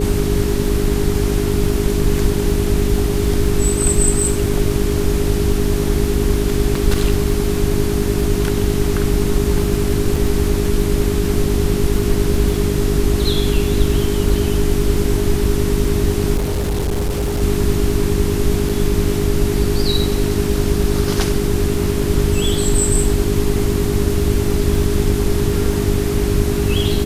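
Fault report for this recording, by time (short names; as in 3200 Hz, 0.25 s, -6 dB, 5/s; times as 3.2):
crackle 18/s -23 dBFS
hum 50 Hz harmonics 8 -21 dBFS
tone 410 Hz -22 dBFS
10.16 gap 4.3 ms
16.36–17.42 clipped -15.5 dBFS
18.69–18.7 gap 5 ms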